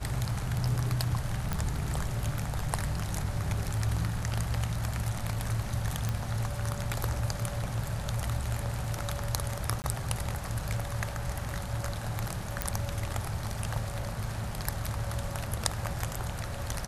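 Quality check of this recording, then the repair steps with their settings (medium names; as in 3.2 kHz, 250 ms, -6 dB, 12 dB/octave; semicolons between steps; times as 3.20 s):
1.53 s: pop -16 dBFS
6.09 s: pop
9.82–9.84 s: dropout 19 ms
12.62 s: pop -11 dBFS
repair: de-click; interpolate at 9.82 s, 19 ms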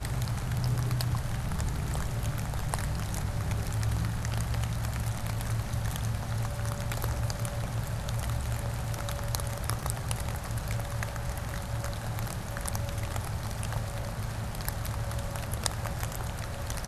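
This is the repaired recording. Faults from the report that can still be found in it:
nothing left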